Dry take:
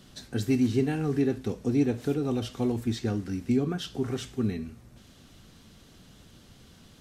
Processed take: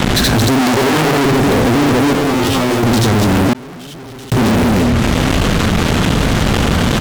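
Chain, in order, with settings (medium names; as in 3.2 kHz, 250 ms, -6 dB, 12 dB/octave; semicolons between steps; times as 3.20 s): local Wiener filter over 9 samples; loudspeakers at several distances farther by 26 m -2 dB, 91 m -7 dB; peak limiter -20.5 dBFS, peak gain reduction 9 dB; fuzz box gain 59 dB, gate -53 dBFS; 0.61–1.25 s: bass shelf 190 Hz -11 dB; 2.13–2.83 s: feedback comb 89 Hz, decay 0.22 s, harmonics all, mix 90%; 3.53–4.32 s: gate -2 dBFS, range -59 dB; level flattener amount 70%; trim +2 dB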